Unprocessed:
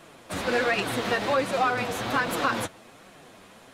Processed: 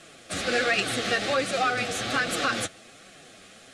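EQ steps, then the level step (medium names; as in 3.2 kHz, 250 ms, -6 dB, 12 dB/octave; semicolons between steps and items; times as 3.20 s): Butterworth band-stop 960 Hz, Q 3.3; low-pass 9.7 kHz 24 dB/octave; treble shelf 2.3 kHz +9.5 dB; -2.0 dB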